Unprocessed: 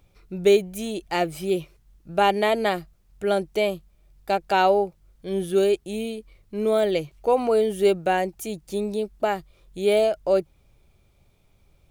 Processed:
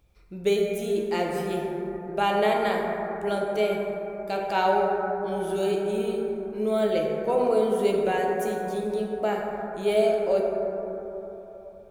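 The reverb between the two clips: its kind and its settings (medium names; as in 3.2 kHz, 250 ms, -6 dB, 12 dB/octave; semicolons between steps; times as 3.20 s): plate-style reverb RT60 3.8 s, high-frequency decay 0.25×, DRR -1.5 dB; trim -6 dB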